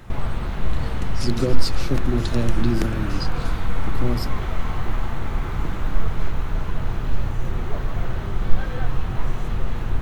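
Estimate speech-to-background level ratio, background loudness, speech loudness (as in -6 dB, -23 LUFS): 1.0 dB, -28.5 LUFS, -27.5 LUFS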